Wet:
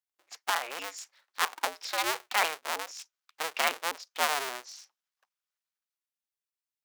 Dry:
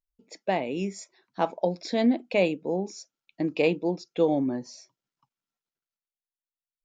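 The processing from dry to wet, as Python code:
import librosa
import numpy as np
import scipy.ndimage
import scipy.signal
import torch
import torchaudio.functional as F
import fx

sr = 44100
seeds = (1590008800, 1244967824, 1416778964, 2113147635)

y = fx.cycle_switch(x, sr, every=2, mode='inverted')
y = scipy.signal.sosfilt(scipy.signal.butter(2, 1000.0, 'highpass', fs=sr, output='sos'), y)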